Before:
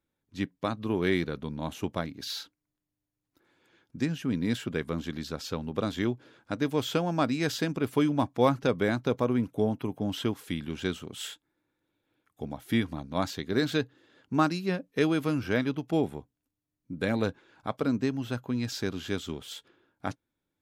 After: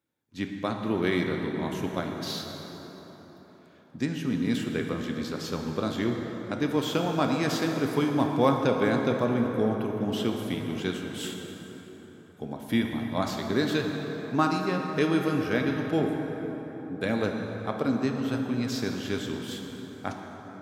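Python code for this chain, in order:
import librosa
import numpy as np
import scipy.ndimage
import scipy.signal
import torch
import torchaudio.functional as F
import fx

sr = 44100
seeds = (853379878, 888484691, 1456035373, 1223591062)

y = scipy.signal.sosfilt(scipy.signal.butter(2, 100.0, 'highpass', fs=sr, output='sos'), x)
y = fx.rev_plate(y, sr, seeds[0], rt60_s=4.6, hf_ratio=0.5, predelay_ms=0, drr_db=2.0)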